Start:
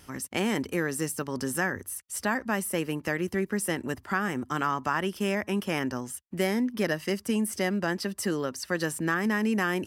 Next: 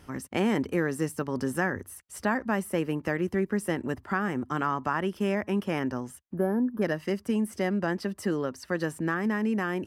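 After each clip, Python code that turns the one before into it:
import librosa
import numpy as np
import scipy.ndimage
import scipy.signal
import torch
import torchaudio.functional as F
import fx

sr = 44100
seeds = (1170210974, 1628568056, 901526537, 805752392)

y = fx.spec_box(x, sr, start_s=6.33, length_s=0.49, low_hz=1800.0, high_hz=10000.0, gain_db=-24)
y = fx.high_shelf(y, sr, hz=2600.0, db=-11.5)
y = fx.rider(y, sr, range_db=3, speed_s=2.0)
y = y * 10.0 ** (1.0 / 20.0)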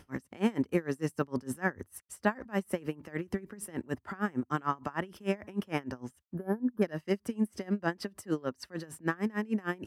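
y = x * 10.0 ** (-26 * (0.5 - 0.5 * np.cos(2.0 * np.pi * 6.6 * np.arange(len(x)) / sr)) / 20.0)
y = y * 10.0 ** (1.5 / 20.0)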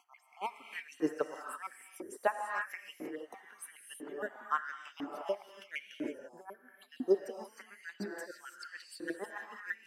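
y = fx.spec_dropout(x, sr, seeds[0], share_pct=46)
y = fx.rev_gated(y, sr, seeds[1], gate_ms=360, shape='rising', drr_db=2.5)
y = fx.filter_lfo_highpass(y, sr, shape='saw_up', hz=1.0, low_hz=290.0, high_hz=3500.0, q=3.2)
y = y * 10.0 ** (-5.0 / 20.0)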